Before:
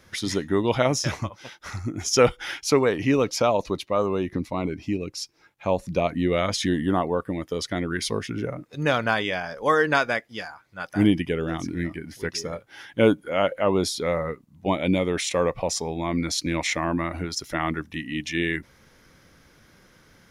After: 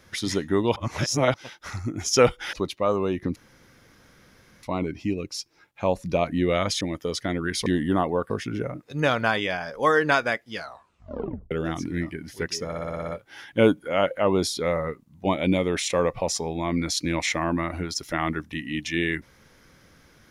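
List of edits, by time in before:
0.76–1.34 s: reverse
2.53–3.63 s: delete
4.46 s: insert room tone 1.27 s
6.64–7.28 s: move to 8.13 s
10.38 s: tape stop 0.96 s
12.49 s: stutter 0.06 s, 8 plays

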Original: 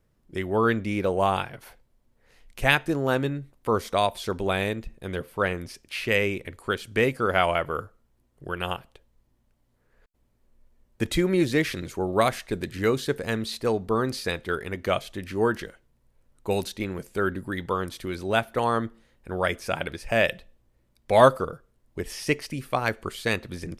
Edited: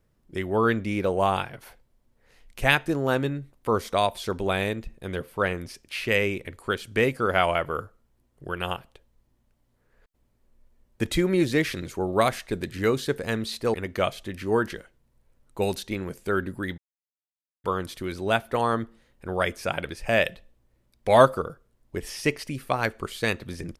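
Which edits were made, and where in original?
13.74–14.63 s: delete
17.67 s: insert silence 0.86 s

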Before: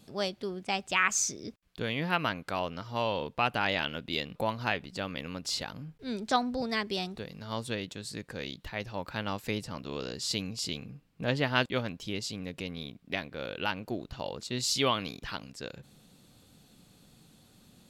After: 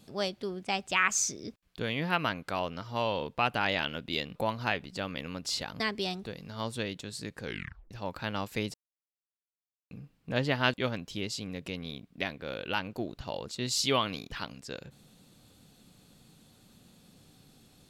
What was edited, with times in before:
5.80–6.72 s: delete
8.36 s: tape stop 0.47 s
9.66–10.83 s: mute

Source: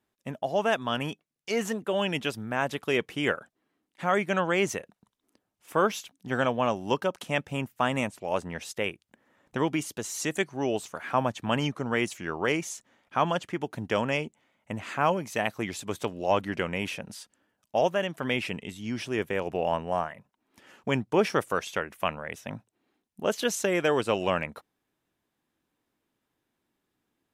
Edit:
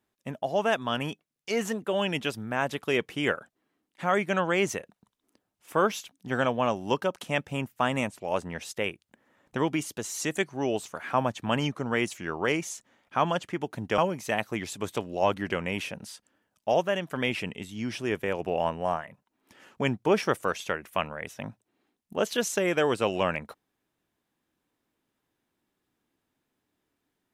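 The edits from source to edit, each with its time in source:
13.98–15.05 s: delete

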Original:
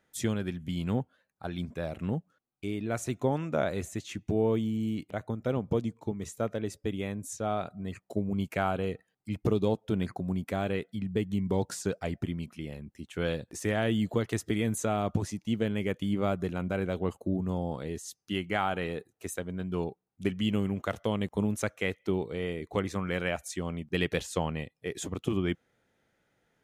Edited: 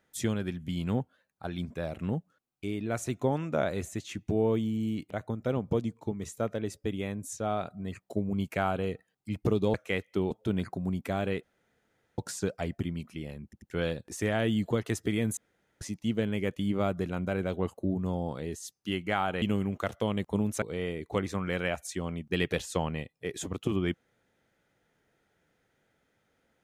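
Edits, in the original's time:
10.86–11.61 s: room tone
12.87 s: stutter in place 0.09 s, 3 plays
14.80–15.24 s: room tone
18.85–20.46 s: delete
21.66–22.23 s: move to 9.74 s

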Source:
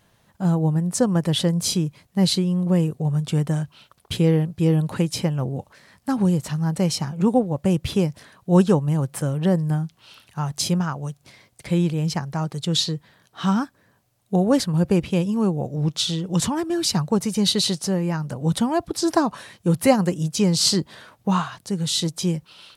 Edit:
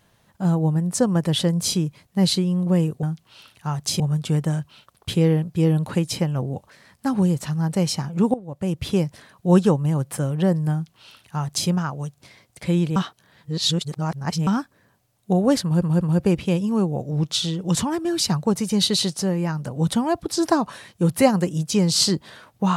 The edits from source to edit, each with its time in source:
7.37–8.01 s: fade in linear, from -17.5 dB
9.75–10.72 s: copy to 3.03 s
11.99–13.50 s: reverse
14.66 s: stutter 0.19 s, 3 plays

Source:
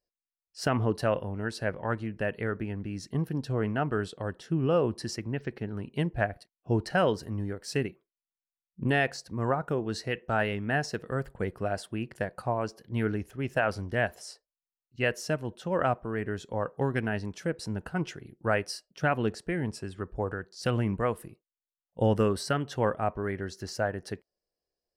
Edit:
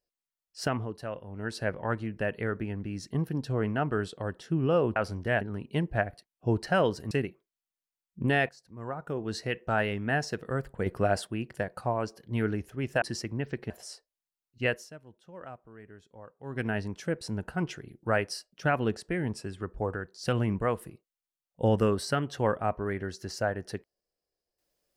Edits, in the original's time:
0.60–1.54 s: dip -10 dB, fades 0.28 s
4.96–5.64 s: swap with 13.63–14.08 s
7.34–7.72 s: delete
9.10–9.98 s: fade in quadratic, from -15 dB
11.47–11.88 s: gain +5 dB
15.05–17.05 s: dip -17.5 dB, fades 0.23 s

